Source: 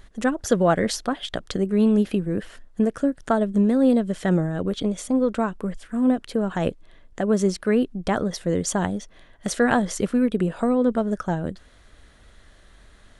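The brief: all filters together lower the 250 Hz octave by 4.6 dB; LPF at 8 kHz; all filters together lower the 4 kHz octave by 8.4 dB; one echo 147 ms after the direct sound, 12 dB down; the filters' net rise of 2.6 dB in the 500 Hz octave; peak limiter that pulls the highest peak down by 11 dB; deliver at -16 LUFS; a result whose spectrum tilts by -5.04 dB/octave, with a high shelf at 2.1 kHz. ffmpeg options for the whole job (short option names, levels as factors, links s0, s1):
-af "lowpass=8000,equalizer=f=250:t=o:g=-6.5,equalizer=f=500:t=o:g=5,highshelf=f=2100:g=-3.5,equalizer=f=4000:t=o:g=-7.5,alimiter=limit=0.158:level=0:latency=1,aecho=1:1:147:0.251,volume=3.35"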